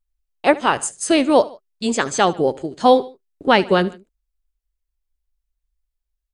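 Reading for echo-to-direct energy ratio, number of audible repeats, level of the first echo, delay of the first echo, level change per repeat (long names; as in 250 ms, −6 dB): −19.0 dB, 2, −20.0 dB, 74 ms, −6.0 dB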